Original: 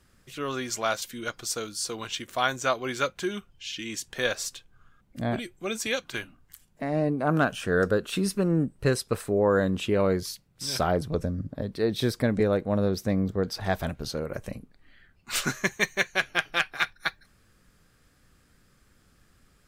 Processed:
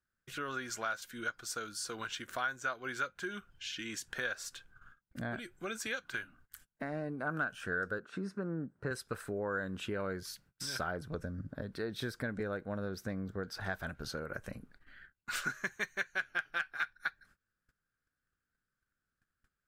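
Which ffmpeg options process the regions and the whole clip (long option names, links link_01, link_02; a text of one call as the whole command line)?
ffmpeg -i in.wav -filter_complex "[0:a]asettb=1/sr,asplit=3[link_01][link_02][link_03];[link_01]atrim=end=7.994[link_04];[link_02]atrim=start=7.99:end=8.91,asetpts=PTS-STARTPTS,afade=type=in:duration=0.004:curve=qsin,afade=type=out:start_time=0.916:duration=0.004:curve=qsin,highpass=120,lowpass=4000,equalizer=frequency=3100:width_type=o:width=1.1:gain=-14[link_05];[link_03]atrim=start=8.906[link_06];[link_04][link_05]acrossfade=duration=0.004:curve1=hsin:curve2=qsin[link_07];[link_07][link_06]acrossfade=duration=0.004:curve1=qsin:curve2=hsin,agate=range=-26dB:threshold=-55dB:ratio=16:detection=peak,equalizer=frequency=1500:width=3.2:gain=14,acompressor=threshold=-36dB:ratio=2.5,volume=-3.5dB" out.wav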